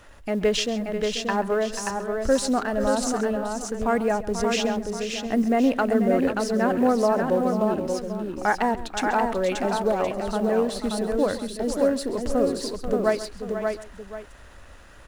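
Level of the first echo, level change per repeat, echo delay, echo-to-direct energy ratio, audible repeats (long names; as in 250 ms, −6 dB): −16.5 dB, repeats not evenly spaced, 134 ms, −3.0 dB, 5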